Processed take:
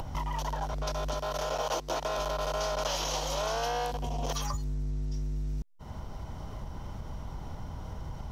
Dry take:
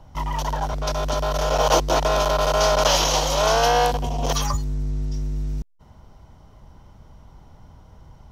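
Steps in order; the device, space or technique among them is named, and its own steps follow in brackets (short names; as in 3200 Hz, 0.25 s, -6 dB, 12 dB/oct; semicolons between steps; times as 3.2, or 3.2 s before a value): 1.19–2.19 low shelf 170 Hz -8 dB; upward and downward compression (upward compressor, threshold -29 dBFS; compressor 4:1, threshold -31 dBFS, peak gain reduction 14.5 dB)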